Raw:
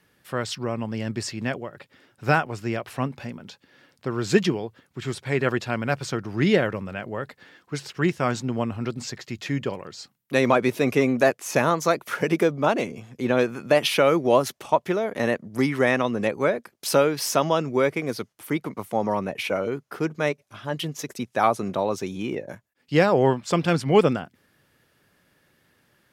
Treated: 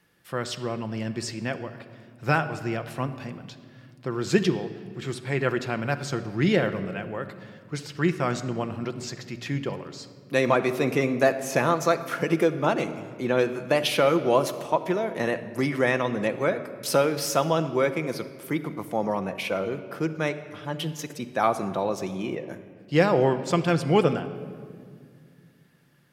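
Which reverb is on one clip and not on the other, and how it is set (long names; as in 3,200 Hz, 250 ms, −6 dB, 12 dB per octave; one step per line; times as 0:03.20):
rectangular room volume 3,900 cubic metres, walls mixed, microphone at 0.79 metres
level −2.5 dB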